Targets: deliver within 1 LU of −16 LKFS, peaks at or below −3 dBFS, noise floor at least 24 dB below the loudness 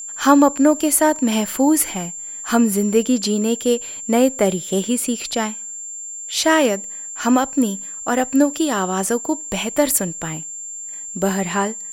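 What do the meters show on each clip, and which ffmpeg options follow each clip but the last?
interfering tone 7,300 Hz; level of the tone −29 dBFS; integrated loudness −19.0 LKFS; sample peak −1.5 dBFS; target loudness −16.0 LKFS
→ -af "bandreject=frequency=7300:width=30"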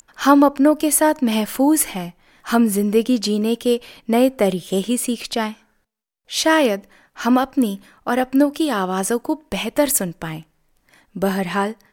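interfering tone none found; integrated loudness −19.0 LKFS; sample peak −1.5 dBFS; target loudness −16.0 LKFS
→ -af "volume=3dB,alimiter=limit=-3dB:level=0:latency=1"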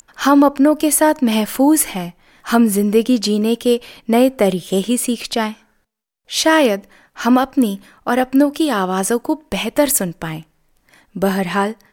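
integrated loudness −16.5 LKFS; sample peak −3.0 dBFS; background noise floor −62 dBFS

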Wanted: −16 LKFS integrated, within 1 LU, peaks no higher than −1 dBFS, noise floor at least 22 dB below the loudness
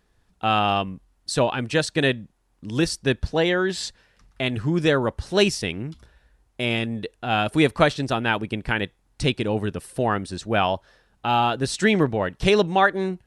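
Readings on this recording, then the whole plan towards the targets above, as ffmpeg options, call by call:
integrated loudness −23.0 LKFS; sample peak −4.0 dBFS; target loudness −16.0 LKFS
→ -af "volume=7dB,alimiter=limit=-1dB:level=0:latency=1"

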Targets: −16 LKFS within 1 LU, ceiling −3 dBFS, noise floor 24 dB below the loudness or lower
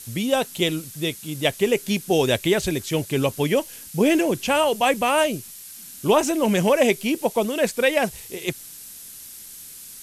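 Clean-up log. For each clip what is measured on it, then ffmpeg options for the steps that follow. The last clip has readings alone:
background noise floor −41 dBFS; target noise floor −46 dBFS; integrated loudness −22.0 LKFS; sample peak −5.0 dBFS; target loudness −16.0 LKFS
→ -af "afftdn=noise_reduction=6:noise_floor=-41"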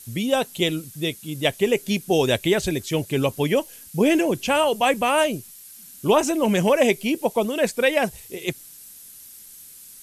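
background noise floor −44 dBFS; target noise floor −46 dBFS
→ -af "afftdn=noise_reduction=6:noise_floor=-44"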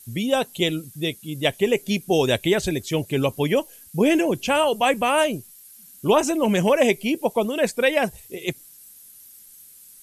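background noise floor −48 dBFS; integrated loudness −22.0 LKFS; sample peak −5.0 dBFS; target loudness −16.0 LKFS
→ -af "volume=6dB,alimiter=limit=-3dB:level=0:latency=1"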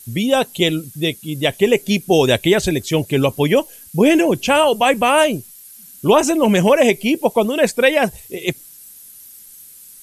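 integrated loudness −16.5 LKFS; sample peak −3.0 dBFS; background noise floor −42 dBFS

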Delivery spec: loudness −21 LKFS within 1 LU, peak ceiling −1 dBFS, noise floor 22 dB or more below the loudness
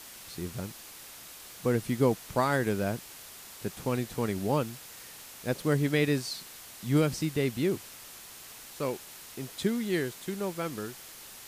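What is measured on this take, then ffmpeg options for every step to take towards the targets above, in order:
background noise floor −48 dBFS; target noise floor −53 dBFS; integrated loudness −31.0 LKFS; sample peak −12.5 dBFS; target loudness −21.0 LKFS
→ -af "afftdn=noise_reduction=6:noise_floor=-48"
-af "volume=10dB"

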